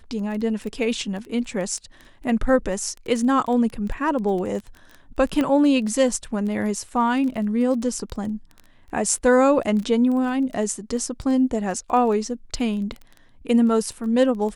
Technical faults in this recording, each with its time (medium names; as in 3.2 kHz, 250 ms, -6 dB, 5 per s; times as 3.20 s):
crackle 11 per s -29 dBFS
5.41 s: pop -12 dBFS